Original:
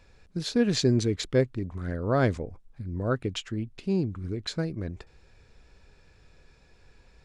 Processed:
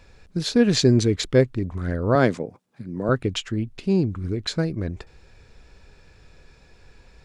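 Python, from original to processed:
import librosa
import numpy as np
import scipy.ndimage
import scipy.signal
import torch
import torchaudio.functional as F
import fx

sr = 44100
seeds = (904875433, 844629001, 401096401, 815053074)

y = fx.highpass(x, sr, hz=140.0, slope=24, at=(2.15, 3.09))
y = F.gain(torch.from_numpy(y), 6.0).numpy()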